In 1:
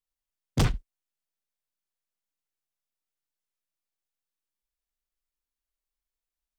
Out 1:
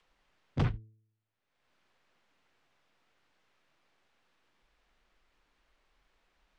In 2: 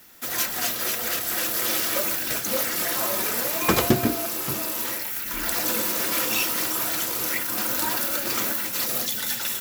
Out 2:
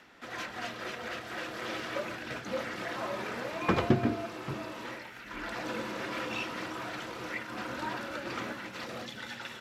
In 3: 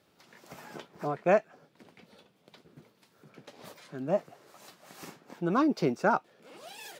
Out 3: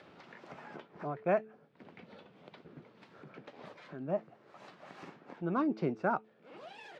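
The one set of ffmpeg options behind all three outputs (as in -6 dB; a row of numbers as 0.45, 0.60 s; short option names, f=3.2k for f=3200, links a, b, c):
-af "lowshelf=f=63:g=-9,bandreject=f=109:t=h:w=4,bandreject=f=218:t=h:w=4,bandreject=f=327:t=h:w=4,bandreject=f=436:t=h:w=4,adynamicequalizer=threshold=0.00501:dfrequency=100:dqfactor=0.79:tfrequency=100:tqfactor=0.79:attack=5:release=100:ratio=0.375:range=3:mode=boostabove:tftype=bell,acompressor=mode=upward:threshold=-35dB:ratio=2.5,lowpass=2.6k,volume=-6dB"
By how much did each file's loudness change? -5.5, -12.5, -6.0 LU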